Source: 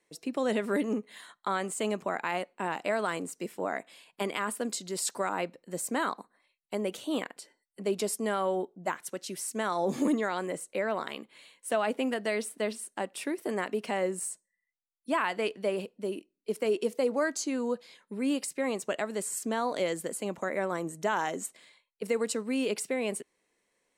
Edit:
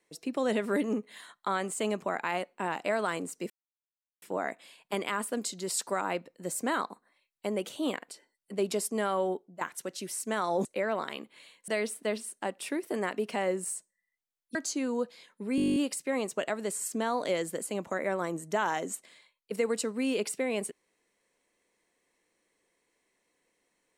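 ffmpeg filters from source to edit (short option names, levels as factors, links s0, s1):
-filter_complex "[0:a]asplit=16[s0][s1][s2][s3][s4][s5][s6][s7][s8][s9][s10][s11][s12][s13][s14][s15];[s0]atrim=end=3.5,asetpts=PTS-STARTPTS,afade=t=out:st=3.496:d=0.004:c=hsin,apad=pad_dur=0.72[s16];[s1]atrim=start=3.5:end=8.89,asetpts=PTS-STARTPTS,afade=t=in:d=0.004:c=hsin,afade=t=out:st=5.09:d=0.3:silence=0.237137[s17];[s2]atrim=start=8.89:end=9.932,asetpts=PTS-STARTPTS,afade=t=in:d=0.004:c=hsin:silence=0.237137[s18];[s3]atrim=start=10.638:end=11.672[s19];[s4]atrim=start=12.228:end=15.102[s20];[s5]atrim=start=17.258:end=18.292[s21];[s6]atrim=start=18.268:end=18.292[s22];[s7]atrim=start=18.268:end=18.292[s23];[s8]atrim=start=18.268:end=18.292[s24];[s9]atrim=start=18.268:end=18.292[s25];[s10]atrim=start=18.268:end=18.292[s26];[s11]atrim=start=18.268:end=18.292[s27];[s12]atrim=start=18.268:end=18.292[s28];[s13]atrim=start=18.268:end=18.292[s29];[s14]atrim=start=18.268:end=18.292[s30];[s15]atrim=start=18.268[s31];[s16][s17][s18]concat=n=3:v=0:a=1[s32];[s32][s19]acrossfade=d=0.004:c1=hsin:c2=hsin[s33];[s33][s20]acrossfade=d=0.004:c1=hsin:c2=hsin[s34];[s34][s21]acrossfade=d=0.004:c1=hsin:c2=hsin[s35];[s35][s22]acrossfade=d=0.004:c1=hsin:c2=hsin[s36];[s36][s23]acrossfade=d=0.004:c1=hsin:c2=hsin[s37];[s37][s24]acrossfade=d=0.004:c1=hsin:c2=hsin[s38];[s38][s25]acrossfade=d=0.004:c1=hsin:c2=hsin[s39];[s39][s26]acrossfade=d=0.004:c1=hsin:c2=hsin[s40];[s40][s27]acrossfade=d=0.004:c1=hsin:c2=hsin[s41];[s41][s28]acrossfade=d=0.004:c1=hsin:c2=hsin[s42];[s42][s29]acrossfade=d=0.004:c1=hsin:c2=hsin[s43];[s43][s30]acrossfade=d=0.004:c1=hsin:c2=hsin[s44];[s44][s31]acrossfade=d=0.004:c1=hsin:c2=hsin"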